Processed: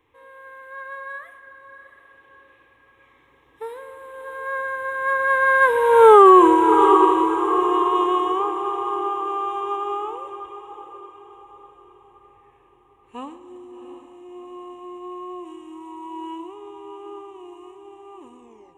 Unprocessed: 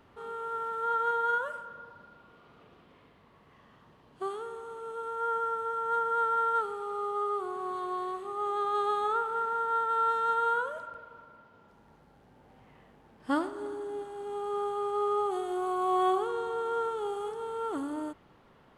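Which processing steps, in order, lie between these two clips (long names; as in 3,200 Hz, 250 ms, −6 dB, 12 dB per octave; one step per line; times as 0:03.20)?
turntable brake at the end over 0.92 s
source passing by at 0:06.17, 49 m/s, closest 7.1 metres
parametric band 3,300 Hz +3.5 dB 2.1 octaves
phaser with its sweep stopped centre 960 Hz, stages 8
feedback delay with all-pass diffusion 710 ms, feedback 45%, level −11 dB
boost into a limiter +31 dB
level −1 dB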